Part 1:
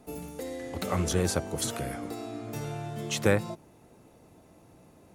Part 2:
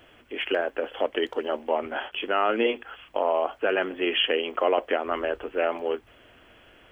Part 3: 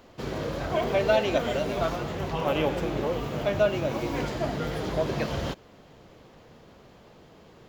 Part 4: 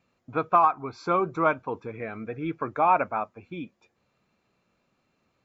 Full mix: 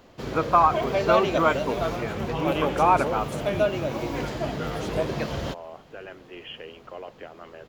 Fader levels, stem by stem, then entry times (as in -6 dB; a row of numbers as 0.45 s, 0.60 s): -13.0 dB, -16.5 dB, 0.0 dB, +1.5 dB; 1.70 s, 2.30 s, 0.00 s, 0.00 s